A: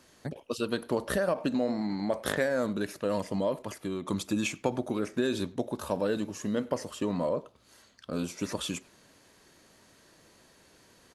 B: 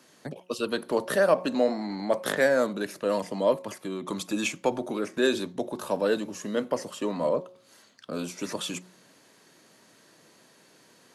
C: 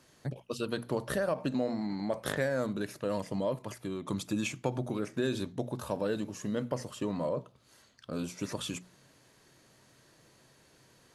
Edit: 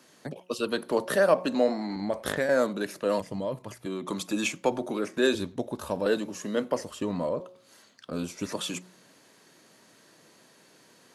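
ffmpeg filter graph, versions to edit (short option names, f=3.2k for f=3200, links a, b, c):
-filter_complex "[0:a]asplit=4[a][b][c][d];[1:a]asplit=6[e][f][g][h][i][j];[e]atrim=end=1.962[k];[a]atrim=start=1.958:end=2.492[l];[f]atrim=start=2.488:end=3.202[m];[2:a]atrim=start=3.198:end=3.862[n];[g]atrim=start=3.858:end=5.352[o];[b]atrim=start=5.348:end=6.062[p];[h]atrim=start=6.058:end=6.812[q];[c]atrim=start=6.808:end=7.402[r];[i]atrim=start=7.398:end=8.102[s];[d]atrim=start=8.098:end=8.522[t];[j]atrim=start=8.518[u];[k][l]acrossfade=d=0.004:c1=hsin:c2=hsin[v];[v][m]acrossfade=d=0.004:c1=hsin:c2=hsin[w];[w][n]acrossfade=d=0.004:c1=hsin:c2=hsin[x];[x][o]acrossfade=d=0.004:c1=hsin:c2=hsin[y];[y][p]acrossfade=d=0.004:c1=hsin:c2=hsin[z];[z][q]acrossfade=d=0.004:c1=hsin:c2=hsin[aa];[aa][r]acrossfade=d=0.004:c1=hsin:c2=hsin[ab];[ab][s]acrossfade=d=0.004:c1=hsin:c2=hsin[ac];[ac][t]acrossfade=d=0.004:c1=hsin:c2=hsin[ad];[ad][u]acrossfade=d=0.004:c1=hsin:c2=hsin"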